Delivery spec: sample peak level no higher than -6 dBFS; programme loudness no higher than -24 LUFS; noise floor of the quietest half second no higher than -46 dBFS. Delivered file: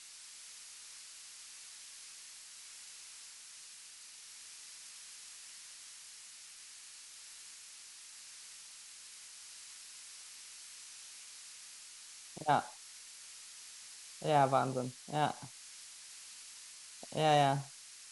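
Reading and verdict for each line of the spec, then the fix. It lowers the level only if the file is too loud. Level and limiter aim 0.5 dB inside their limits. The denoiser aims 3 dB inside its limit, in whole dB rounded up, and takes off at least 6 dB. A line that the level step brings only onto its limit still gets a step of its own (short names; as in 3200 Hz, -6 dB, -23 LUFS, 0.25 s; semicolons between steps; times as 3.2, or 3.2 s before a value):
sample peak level -15.5 dBFS: OK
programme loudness -40.5 LUFS: OK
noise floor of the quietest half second -53 dBFS: OK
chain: none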